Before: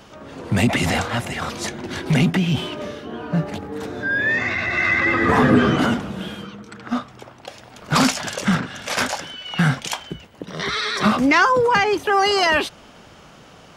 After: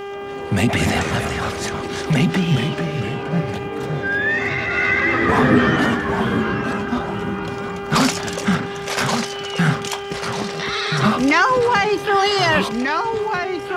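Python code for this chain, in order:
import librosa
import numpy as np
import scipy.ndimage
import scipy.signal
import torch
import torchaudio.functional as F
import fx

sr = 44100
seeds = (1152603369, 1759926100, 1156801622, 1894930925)

y = fx.echo_pitch(x, sr, ms=152, semitones=-2, count=3, db_per_echo=-6.0)
y = fx.dmg_buzz(y, sr, base_hz=400.0, harmonics=8, level_db=-30.0, tilt_db=-7, odd_only=False)
y = fx.dmg_crackle(y, sr, seeds[0], per_s=210.0, level_db=-45.0)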